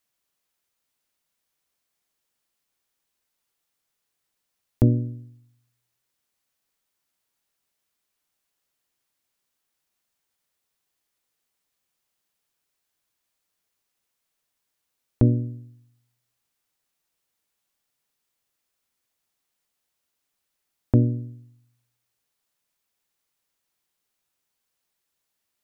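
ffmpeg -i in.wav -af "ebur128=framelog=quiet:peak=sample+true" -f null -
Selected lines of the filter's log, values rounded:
Integrated loudness:
  I:         -23.6 LUFS
  Threshold: -36.0 LUFS
Loudness range:
  LRA:         1.1 LU
  Threshold: -51.3 LUFS
  LRA low:   -31.7 LUFS
  LRA high:  -30.6 LUFS
Sample peak:
  Peak:       -5.7 dBFS
True peak:
  Peak:       -5.7 dBFS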